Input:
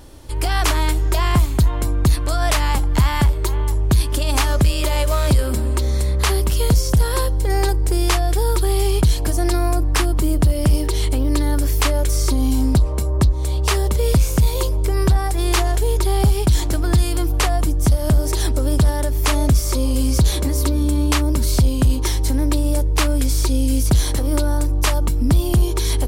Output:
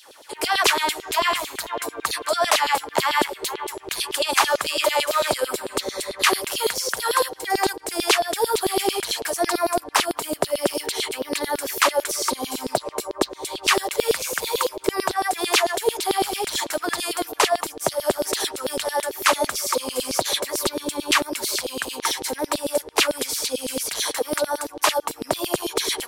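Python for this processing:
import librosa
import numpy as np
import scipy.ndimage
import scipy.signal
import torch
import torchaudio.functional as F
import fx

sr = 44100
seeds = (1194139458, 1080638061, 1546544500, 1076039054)

y = fx.vibrato(x, sr, rate_hz=12.0, depth_cents=22.0)
y = fx.filter_lfo_highpass(y, sr, shape='saw_down', hz=9.0, low_hz=370.0, high_hz=4100.0, q=3.2)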